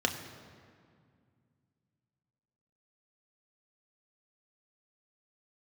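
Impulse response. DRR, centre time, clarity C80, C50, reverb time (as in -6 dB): 3.5 dB, 30 ms, 9.5 dB, 8.5 dB, 2.1 s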